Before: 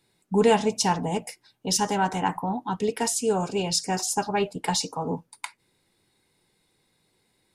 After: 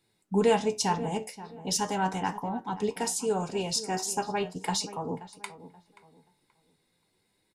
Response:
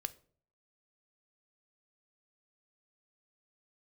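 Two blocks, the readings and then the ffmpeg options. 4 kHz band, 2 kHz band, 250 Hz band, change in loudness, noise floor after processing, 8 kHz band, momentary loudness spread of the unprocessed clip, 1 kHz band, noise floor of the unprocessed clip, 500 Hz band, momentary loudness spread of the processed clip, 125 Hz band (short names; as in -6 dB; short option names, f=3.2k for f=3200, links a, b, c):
-4.5 dB, -4.5 dB, -4.5 dB, -4.0 dB, -74 dBFS, -4.5 dB, 12 LU, -4.5 dB, -71 dBFS, -3.5 dB, 12 LU, -4.5 dB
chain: -filter_complex "[0:a]asplit=2[a][b];[b]adelay=529,lowpass=f=1.9k:p=1,volume=-15dB,asplit=2[c][d];[d]adelay=529,lowpass=f=1.9k:p=1,volume=0.29,asplit=2[e][f];[f]adelay=529,lowpass=f=1.9k:p=1,volume=0.29[g];[a][c][e][g]amix=inputs=4:normalize=0,flanger=delay=8.6:depth=5.3:regen=72:speed=0.39:shape=triangular"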